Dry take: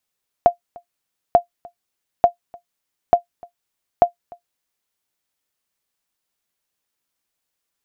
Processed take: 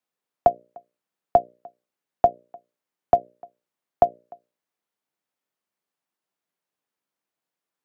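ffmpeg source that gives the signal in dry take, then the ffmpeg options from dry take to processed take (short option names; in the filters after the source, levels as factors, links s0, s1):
-f lavfi -i "aevalsrc='0.794*(sin(2*PI*698*mod(t,0.89))*exp(-6.91*mod(t,0.89)/0.11)+0.0473*sin(2*PI*698*max(mod(t,0.89)-0.3,0))*exp(-6.91*max(mod(t,0.89)-0.3,0)/0.11))':d=4.45:s=44100"
-filter_complex "[0:a]highshelf=f=2200:g=-12,bandreject=f=60:t=h:w=6,bandreject=f=120:t=h:w=6,bandreject=f=180:t=h:w=6,bandreject=f=240:t=h:w=6,bandreject=f=300:t=h:w=6,bandreject=f=360:t=h:w=6,bandreject=f=420:t=h:w=6,bandreject=f=480:t=h:w=6,bandreject=f=540:t=h:w=6,bandreject=f=600:t=h:w=6,acrossover=split=120|410|730[s0][s1][s2][s3];[s0]acrusher=bits=6:mix=0:aa=0.000001[s4];[s4][s1][s2][s3]amix=inputs=4:normalize=0"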